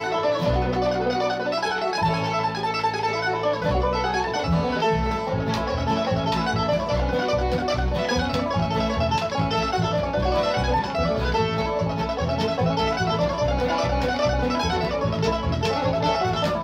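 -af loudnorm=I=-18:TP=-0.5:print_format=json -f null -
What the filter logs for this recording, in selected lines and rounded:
"input_i" : "-23.4",
"input_tp" : "-11.3",
"input_lra" : "0.3",
"input_thresh" : "-33.4",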